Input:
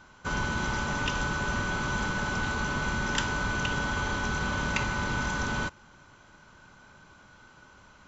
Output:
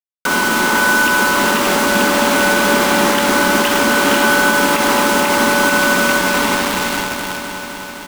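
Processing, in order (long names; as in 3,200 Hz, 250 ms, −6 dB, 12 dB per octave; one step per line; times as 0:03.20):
Butterworth high-pass 190 Hz 36 dB per octave
spectral tilt +3 dB per octave
repeating echo 575 ms, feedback 45%, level −12 dB
dynamic equaliser 280 Hz, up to +8 dB, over −53 dBFS, Q 0.76
low-pass filter 2,300 Hz 12 dB per octave
bouncing-ball delay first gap 490 ms, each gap 0.9×, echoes 5
downward compressor 6 to 1, threshold −30 dBFS, peak gain reduction 8 dB
bit-depth reduction 6 bits, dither none
boost into a limiter +23.5 dB
feedback echo at a low word length 258 ms, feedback 80%, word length 6 bits, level −9 dB
level −5.5 dB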